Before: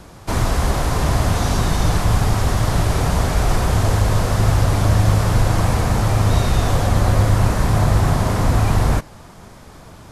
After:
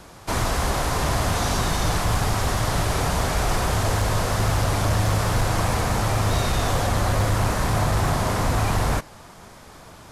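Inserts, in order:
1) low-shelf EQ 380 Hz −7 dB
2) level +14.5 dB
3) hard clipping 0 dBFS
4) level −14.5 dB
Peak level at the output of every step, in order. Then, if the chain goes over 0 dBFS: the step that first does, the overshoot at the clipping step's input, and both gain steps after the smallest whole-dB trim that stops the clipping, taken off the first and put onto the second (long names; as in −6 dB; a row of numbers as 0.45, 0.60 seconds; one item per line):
−8.0, +6.5, 0.0, −14.5 dBFS
step 2, 6.5 dB
step 2 +7.5 dB, step 4 −7.5 dB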